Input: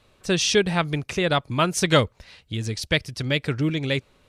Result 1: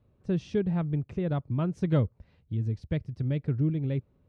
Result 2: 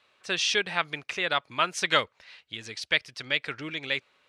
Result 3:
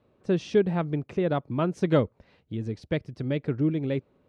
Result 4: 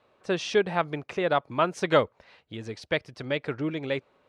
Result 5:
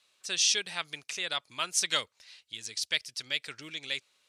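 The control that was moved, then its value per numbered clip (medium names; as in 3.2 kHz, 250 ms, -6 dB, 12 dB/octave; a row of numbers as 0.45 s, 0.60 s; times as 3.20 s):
band-pass filter, frequency: 110 Hz, 2.1 kHz, 280 Hz, 740 Hz, 6.6 kHz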